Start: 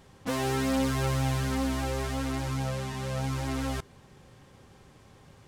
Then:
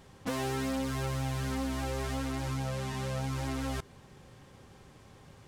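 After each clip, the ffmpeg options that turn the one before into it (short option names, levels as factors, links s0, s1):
-af "acompressor=threshold=0.0316:ratio=6"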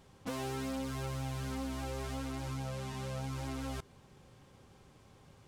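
-af "equalizer=f=1800:t=o:w=0.22:g=-4.5,volume=0.562"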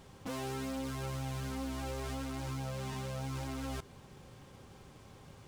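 -af "alimiter=level_in=4.47:limit=0.0631:level=0:latency=1:release=11,volume=0.224,acrusher=bits=6:mode=log:mix=0:aa=0.000001,volume=1.78"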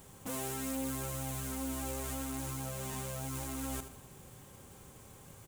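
-filter_complex "[0:a]aecho=1:1:79|158|237|316:0.282|0.118|0.0497|0.0209,acrossover=split=1700[s0][s1];[s1]aexciter=amount=2.9:drive=8.4:freq=6800[s2];[s0][s2]amix=inputs=2:normalize=0,volume=0.891"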